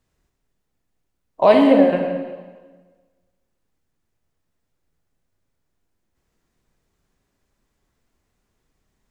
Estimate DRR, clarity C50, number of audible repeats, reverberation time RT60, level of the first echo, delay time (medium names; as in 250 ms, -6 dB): 2.5 dB, 4.0 dB, no echo, 1.4 s, no echo, no echo